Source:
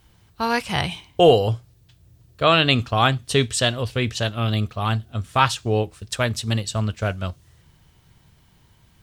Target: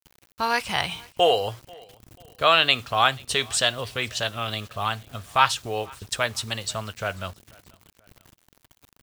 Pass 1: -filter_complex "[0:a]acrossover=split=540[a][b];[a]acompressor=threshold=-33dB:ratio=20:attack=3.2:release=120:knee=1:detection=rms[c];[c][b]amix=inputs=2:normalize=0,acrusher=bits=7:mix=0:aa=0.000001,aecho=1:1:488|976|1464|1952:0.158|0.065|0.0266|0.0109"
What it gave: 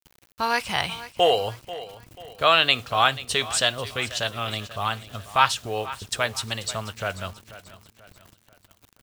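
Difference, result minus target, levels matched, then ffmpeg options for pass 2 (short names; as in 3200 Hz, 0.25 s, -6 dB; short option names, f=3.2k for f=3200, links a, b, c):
echo-to-direct +10 dB
-filter_complex "[0:a]acrossover=split=540[a][b];[a]acompressor=threshold=-33dB:ratio=20:attack=3.2:release=120:knee=1:detection=rms[c];[c][b]amix=inputs=2:normalize=0,acrusher=bits=7:mix=0:aa=0.000001,aecho=1:1:488|976:0.0501|0.0205"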